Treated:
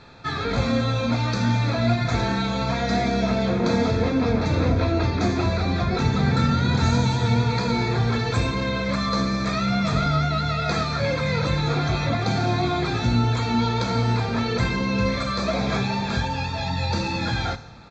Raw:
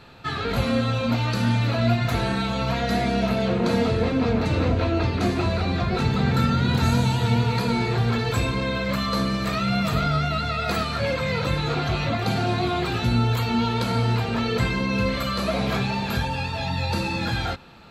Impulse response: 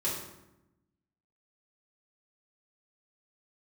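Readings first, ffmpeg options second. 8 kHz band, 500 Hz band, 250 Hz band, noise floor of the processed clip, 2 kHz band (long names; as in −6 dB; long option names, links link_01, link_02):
+1.5 dB, 0.0 dB, +0.5 dB, −27 dBFS, 0.0 dB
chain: -filter_complex "[0:a]aresample=16000,aresample=44100,asuperstop=centerf=2900:order=4:qfactor=5.5,asplit=2[link_01][link_02];[link_02]equalizer=frequency=6200:width=1.5:gain=15[link_03];[1:a]atrim=start_sample=2205,asetrate=34398,aresample=44100[link_04];[link_03][link_04]afir=irnorm=-1:irlink=0,volume=-22.5dB[link_05];[link_01][link_05]amix=inputs=2:normalize=0"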